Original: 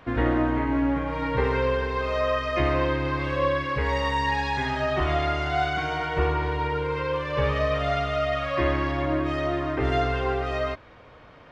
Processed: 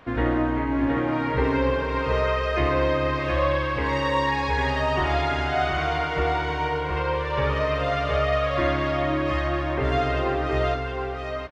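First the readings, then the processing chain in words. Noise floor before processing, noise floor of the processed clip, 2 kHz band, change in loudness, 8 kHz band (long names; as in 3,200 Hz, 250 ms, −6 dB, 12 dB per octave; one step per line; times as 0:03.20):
−49 dBFS, −29 dBFS, +1.5 dB, +1.5 dB, can't be measured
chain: mains-hum notches 50/100/150 Hz
single-tap delay 720 ms −3.5 dB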